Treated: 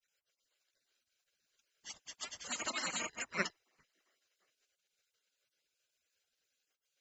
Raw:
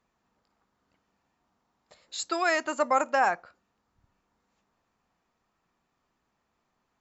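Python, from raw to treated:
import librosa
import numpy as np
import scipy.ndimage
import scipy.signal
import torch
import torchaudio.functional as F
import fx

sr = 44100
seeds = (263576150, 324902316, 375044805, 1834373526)

y = fx.spec_dropout(x, sr, seeds[0], share_pct=26)
y = fx.granulator(y, sr, seeds[1], grain_ms=100.0, per_s=25.0, spray_ms=497.0, spread_st=0)
y = fx.hum_notches(y, sr, base_hz=60, count=4)
y = y + 0.57 * np.pad(y, (int(1.0 * sr / 1000.0), 0))[:len(y)]
y = fx.spec_gate(y, sr, threshold_db=-20, keep='weak')
y = F.gain(torch.from_numpy(y), 8.5).numpy()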